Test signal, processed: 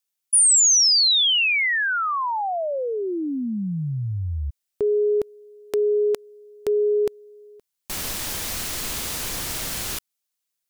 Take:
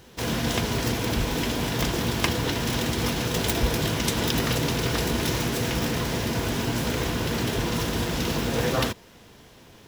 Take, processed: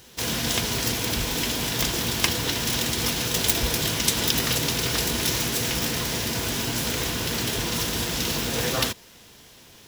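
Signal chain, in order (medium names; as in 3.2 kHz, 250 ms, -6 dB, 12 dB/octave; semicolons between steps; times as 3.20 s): treble shelf 2.4 kHz +11.5 dB; trim -3.5 dB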